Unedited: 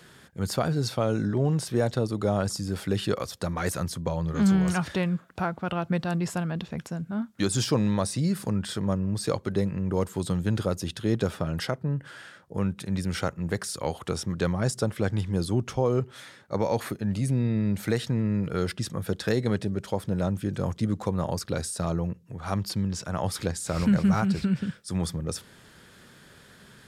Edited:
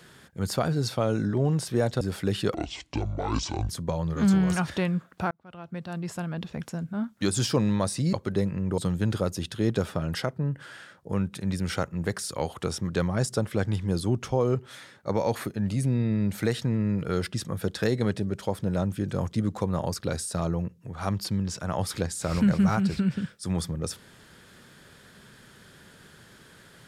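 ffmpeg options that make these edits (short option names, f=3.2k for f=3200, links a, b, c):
-filter_complex "[0:a]asplit=7[a][b][c][d][e][f][g];[a]atrim=end=2.012[h];[b]atrim=start=2.648:end=3.184[i];[c]atrim=start=3.18:end=3.87,asetpts=PTS-STARTPTS,asetrate=26460,aresample=44100[j];[d]atrim=start=3.866:end=5.49,asetpts=PTS-STARTPTS,afade=t=out:st=1.62:d=0.004:c=hsin[k];[e]atrim=start=5.49:end=8.312,asetpts=PTS-STARTPTS,afade=t=in:d=1.36[l];[f]atrim=start=9.328:end=9.982[m];[g]atrim=start=10.228[n];[h][i]acrossfade=d=0.004:c1=hsin:c2=hsin[o];[o][j]acrossfade=d=0.004:c1=hsin:c2=hsin[p];[k][l]concat=n=2:v=0:a=1[q];[p][q]acrossfade=d=0.004:c1=hsin:c2=hsin[r];[r][m]acrossfade=d=0.004:c1=hsin:c2=hsin[s];[s][n]acrossfade=d=0.004:c1=hsin:c2=hsin"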